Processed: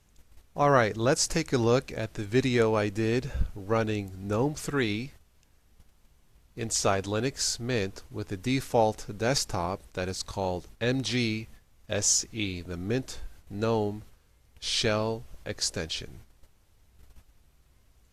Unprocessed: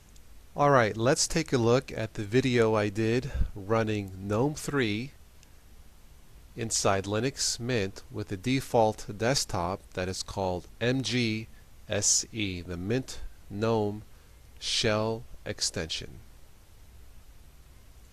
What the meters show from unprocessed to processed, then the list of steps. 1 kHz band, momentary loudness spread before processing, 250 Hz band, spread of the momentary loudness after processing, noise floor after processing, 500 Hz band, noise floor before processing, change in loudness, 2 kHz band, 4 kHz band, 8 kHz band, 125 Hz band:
0.0 dB, 12 LU, 0.0 dB, 12 LU, -63 dBFS, 0.0 dB, -54 dBFS, 0.0 dB, 0.0 dB, 0.0 dB, 0.0 dB, 0.0 dB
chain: gate -47 dBFS, range -9 dB

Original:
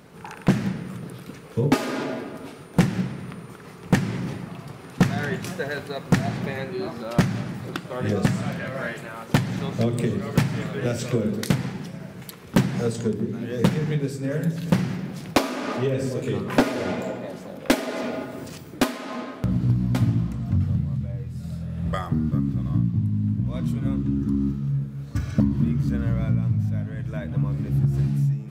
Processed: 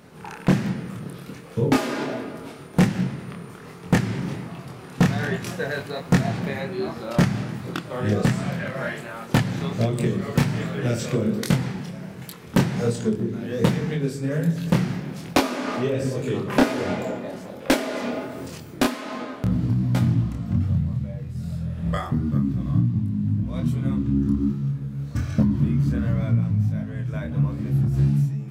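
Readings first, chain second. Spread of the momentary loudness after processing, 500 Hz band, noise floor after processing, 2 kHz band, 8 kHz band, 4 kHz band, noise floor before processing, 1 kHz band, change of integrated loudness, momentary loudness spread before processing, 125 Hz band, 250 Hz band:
11 LU, +1.0 dB, -40 dBFS, +1.0 dB, +1.0 dB, +1.0 dB, -42 dBFS, +1.0 dB, +1.0 dB, 11 LU, +1.0 dB, +1.0 dB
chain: chorus 1.3 Hz, depth 6.6 ms; gain +4 dB

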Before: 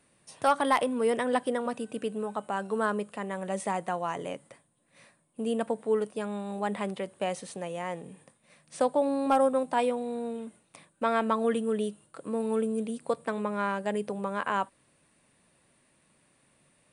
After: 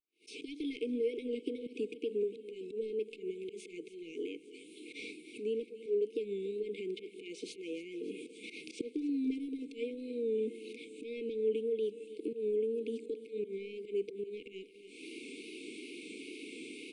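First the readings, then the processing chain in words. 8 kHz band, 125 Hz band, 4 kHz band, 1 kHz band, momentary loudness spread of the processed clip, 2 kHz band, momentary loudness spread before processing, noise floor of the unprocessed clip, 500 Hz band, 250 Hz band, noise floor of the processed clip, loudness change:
-12.0 dB, under -15 dB, -5.5 dB, under -40 dB, 13 LU, -12.5 dB, 11 LU, -68 dBFS, -5.5 dB, -7.0 dB, -55 dBFS, -8.5 dB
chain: recorder AGC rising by 68 dB/s; expander -44 dBFS; Chebyshev high-pass 290 Hz, order 4; wow and flutter 83 cents; auto swell 0.105 s; in parallel at -8 dB: soft clip -26.5 dBFS, distortion -10 dB; on the sum: brick-wall FIR band-stop 480–2100 Hz; tape spacing loss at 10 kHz 27 dB; on a send: feedback echo 0.286 s, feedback 57%, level -16 dB; on the sum: mismatched tape noise reduction encoder only; gain -3 dB

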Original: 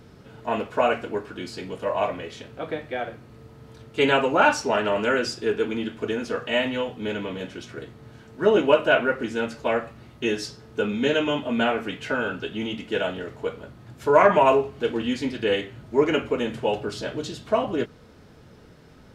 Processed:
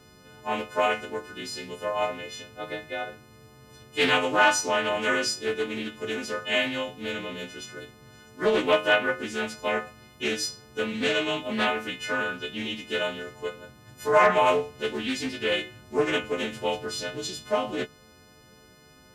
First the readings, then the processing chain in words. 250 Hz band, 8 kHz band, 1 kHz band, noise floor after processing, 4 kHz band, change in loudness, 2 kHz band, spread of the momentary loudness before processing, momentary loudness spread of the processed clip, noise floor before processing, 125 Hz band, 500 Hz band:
-5.5 dB, +7.0 dB, -2.0 dB, -54 dBFS, +2.0 dB, -2.5 dB, +0.5 dB, 15 LU, 15 LU, -50 dBFS, -6.0 dB, -4.5 dB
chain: frequency quantiser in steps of 3 st; overloaded stage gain 5 dB; Doppler distortion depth 0.25 ms; gain -4.5 dB

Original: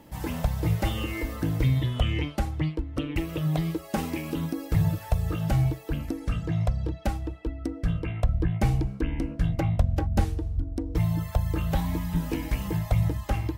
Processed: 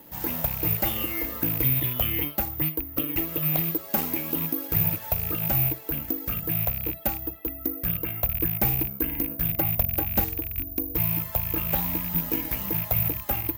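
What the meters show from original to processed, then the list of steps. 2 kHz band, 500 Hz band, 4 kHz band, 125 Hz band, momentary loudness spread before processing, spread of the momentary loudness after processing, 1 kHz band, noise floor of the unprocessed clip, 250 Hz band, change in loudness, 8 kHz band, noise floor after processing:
+2.0 dB, -1.0 dB, +1.5 dB, -6.0 dB, 6 LU, 5 LU, 0.0 dB, -42 dBFS, -3.0 dB, +3.5 dB, +5.0 dB, -40 dBFS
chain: rattling part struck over -26 dBFS, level -29 dBFS; low shelf 120 Hz -12 dB; careless resampling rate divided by 3×, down none, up zero stuff

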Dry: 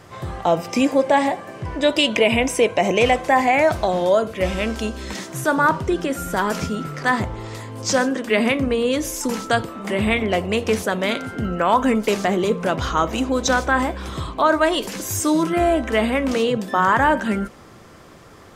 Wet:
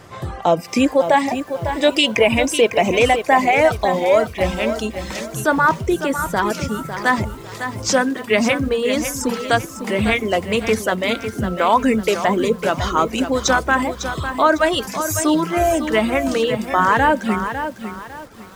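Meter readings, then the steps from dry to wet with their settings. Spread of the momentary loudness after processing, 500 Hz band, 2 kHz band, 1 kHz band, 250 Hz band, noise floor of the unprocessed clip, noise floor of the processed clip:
9 LU, +2.0 dB, +2.5 dB, +2.0 dB, +1.0 dB, -44 dBFS, -35 dBFS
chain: reverb removal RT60 1.1 s; lo-fi delay 0.552 s, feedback 35%, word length 7-bit, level -9 dB; gain +2.5 dB

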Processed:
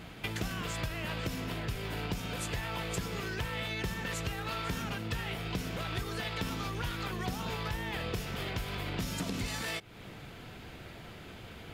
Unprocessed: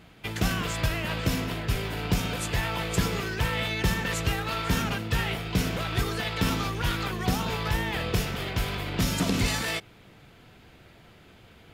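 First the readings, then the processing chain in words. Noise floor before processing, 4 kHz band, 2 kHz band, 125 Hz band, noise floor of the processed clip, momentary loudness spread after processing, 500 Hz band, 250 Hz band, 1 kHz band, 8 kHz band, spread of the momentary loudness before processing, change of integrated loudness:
-54 dBFS, -7.5 dB, -7.5 dB, -8.5 dB, -48 dBFS, 12 LU, -7.0 dB, -8.5 dB, -7.0 dB, -8.0 dB, 4 LU, -8.0 dB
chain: compressor 5:1, threshold -40 dBFS, peak gain reduction 18.5 dB; gain +5.5 dB

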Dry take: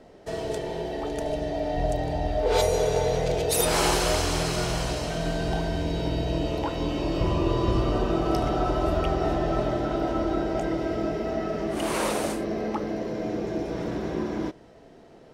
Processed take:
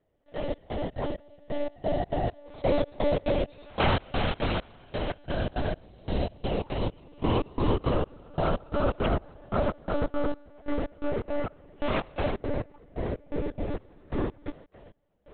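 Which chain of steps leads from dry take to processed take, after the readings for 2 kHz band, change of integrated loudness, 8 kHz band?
-3.5 dB, -4.5 dB, under -40 dB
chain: HPF 60 Hz 24 dB/oct; step gate "....xx..xx.xx" 170 bpm -24 dB; monotone LPC vocoder at 8 kHz 290 Hz; gain +1 dB

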